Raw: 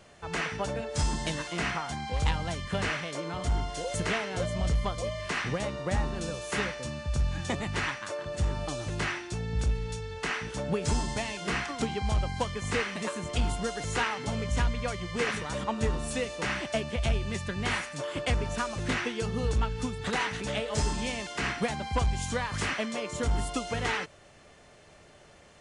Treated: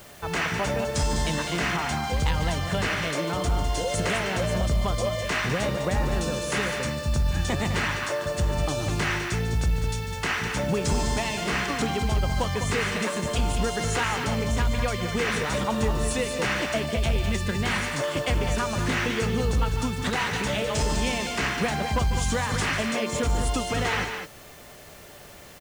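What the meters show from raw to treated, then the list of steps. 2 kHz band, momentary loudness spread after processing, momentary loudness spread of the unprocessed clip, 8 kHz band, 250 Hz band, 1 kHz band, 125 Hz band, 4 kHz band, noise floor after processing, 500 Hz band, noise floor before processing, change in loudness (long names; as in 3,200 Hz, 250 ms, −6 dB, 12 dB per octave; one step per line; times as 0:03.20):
+5.0 dB, 2 LU, 4 LU, +6.0 dB, +5.5 dB, +5.0 dB, +5.0 dB, +5.5 dB, −46 dBFS, +5.5 dB, −55 dBFS, +5.0 dB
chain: brickwall limiter −24.5 dBFS, peak gain reduction 5.5 dB
loudspeakers that aren't time-aligned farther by 50 metres −12 dB, 70 metres −8 dB
background noise white −59 dBFS
level +7 dB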